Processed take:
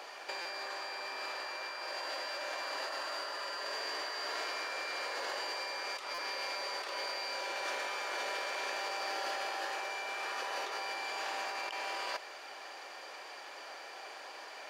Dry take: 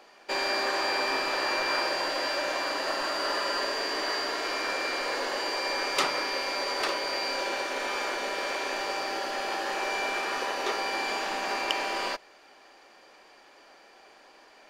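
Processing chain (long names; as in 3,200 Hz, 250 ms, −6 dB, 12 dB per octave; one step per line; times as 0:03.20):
high-pass filter 500 Hz 12 dB per octave
compressor whose output falls as the input rises −39 dBFS, ratio −1
buffer that repeats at 0:00.41/0:06.14, samples 256, times 6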